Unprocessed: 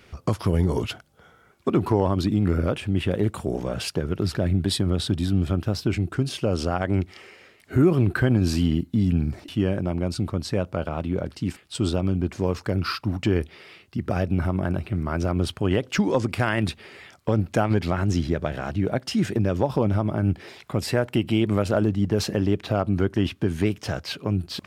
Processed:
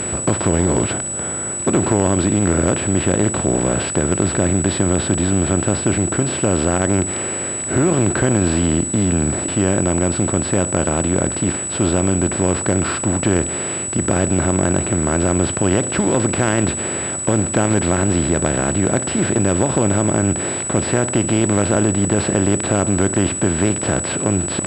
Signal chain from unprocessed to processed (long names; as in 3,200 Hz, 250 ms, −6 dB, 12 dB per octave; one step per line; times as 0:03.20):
compressor on every frequency bin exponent 0.4
switching amplifier with a slow clock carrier 7,900 Hz
level −1.5 dB